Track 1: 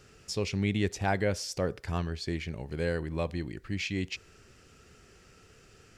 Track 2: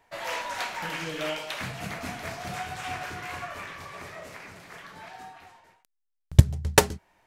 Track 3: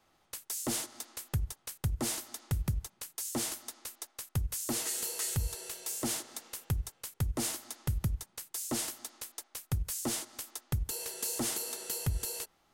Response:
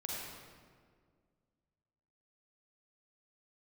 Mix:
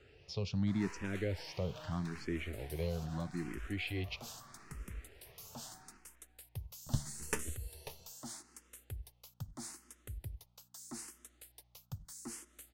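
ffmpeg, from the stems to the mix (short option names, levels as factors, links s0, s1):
-filter_complex "[0:a]lowpass=4200,acrossover=split=390|3000[s0][s1][s2];[s1]acompressor=threshold=0.01:ratio=6[s3];[s0][s3][s2]amix=inputs=3:normalize=0,volume=0.794,asplit=2[s4][s5];[1:a]aeval=exprs='if(lt(val(0),0),0.251*val(0),val(0))':c=same,flanger=delay=7.5:depth=6.5:regen=51:speed=0.53:shape=sinusoidal,adelay=550,volume=0.376,asplit=2[s6][s7];[s7]volume=0.237[s8];[2:a]aeval=exprs='val(0)+0.00141*(sin(2*PI*60*n/s)+sin(2*PI*2*60*n/s)/2+sin(2*PI*3*60*n/s)/3+sin(2*PI*4*60*n/s)/4+sin(2*PI*5*60*n/s)/5)':c=same,adelay=2200,volume=0.299[s9];[s5]apad=whole_len=658760[s10];[s9][s10]sidechaincompress=threshold=0.0112:ratio=8:attack=7.7:release=198[s11];[s8]aecho=0:1:541:1[s12];[s4][s6][s11][s12]amix=inputs=4:normalize=0,asplit=2[s13][s14];[s14]afreqshift=0.79[s15];[s13][s15]amix=inputs=2:normalize=1"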